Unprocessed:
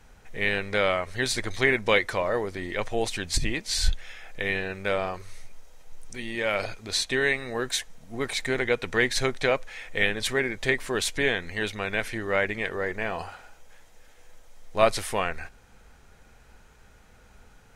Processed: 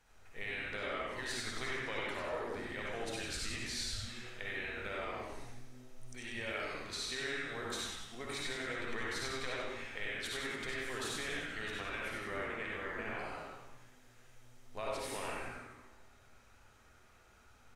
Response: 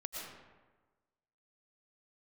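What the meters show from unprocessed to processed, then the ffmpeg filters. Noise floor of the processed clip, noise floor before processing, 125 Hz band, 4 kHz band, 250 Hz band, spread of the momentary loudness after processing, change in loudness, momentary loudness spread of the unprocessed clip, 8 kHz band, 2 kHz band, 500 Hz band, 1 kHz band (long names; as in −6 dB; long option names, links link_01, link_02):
−62 dBFS, −55 dBFS, −13.5 dB, −10.5 dB, −13.0 dB, 10 LU, −13.0 dB, 11 LU, −11.0 dB, −12.5 dB, −15.0 dB, −11.5 dB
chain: -filter_complex "[0:a]lowshelf=frequency=360:gain=-8.5,acompressor=threshold=-30dB:ratio=4,asplit=9[link_01][link_02][link_03][link_04][link_05][link_06][link_07][link_08][link_09];[link_02]adelay=95,afreqshift=-130,volume=-4.5dB[link_10];[link_03]adelay=190,afreqshift=-260,volume=-9.4dB[link_11];[link_04]adelay=285,afreqshift=-390,volume=-14.3dB[link_12];[link_05]adelay=380,afreqshift=-520,volume=-19.1dB[link_13];[link_06]adelay=475,afreqshift=-650,volume=-24dB[link_14];[link_07]adelay=570,afreqshift=-780,volume=-28.9dB[link_15];[link_08]adelay=665,afreqshift=-910,volume=-33.8dB[link_16];[link_09]adelay=760,afreqshift=-1040,volume=-38.7dB[link_17];[link_01][link_10][link_11][link_12][link_13][link_14][link_15][link_16][link_17]amix=inputs=9:normalize=0[link_18];[1:a]atrim=start_sample=2205,asetrate=88200,aresample=44100[link_19];[link_18][link_19]afir=irnorm=-1:irlink=0,volume=-1dB"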